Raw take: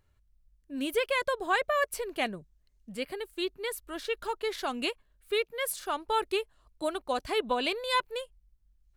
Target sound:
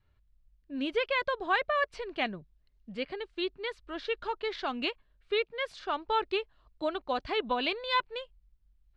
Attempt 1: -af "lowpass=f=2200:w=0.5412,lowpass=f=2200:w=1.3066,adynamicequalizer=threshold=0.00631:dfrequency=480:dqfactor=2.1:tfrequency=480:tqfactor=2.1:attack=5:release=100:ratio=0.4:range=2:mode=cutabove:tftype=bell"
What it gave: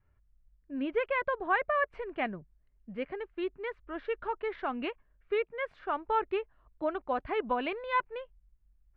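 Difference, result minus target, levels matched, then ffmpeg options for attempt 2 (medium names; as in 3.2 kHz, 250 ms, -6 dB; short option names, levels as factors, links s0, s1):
4 kHz band -11.5 dB
-af "lowpass=f=4500:w=0.5412,lowpass=f=4500:w=1.3066,adynamicequalizer=threshold=0.00631:dfrequency=480:dqfactor=2.1:tfrequency=480:tqfactor=2.1:attack=5:release=100:ratio=0.4:range=2:mode=cutabove:tftype=bell"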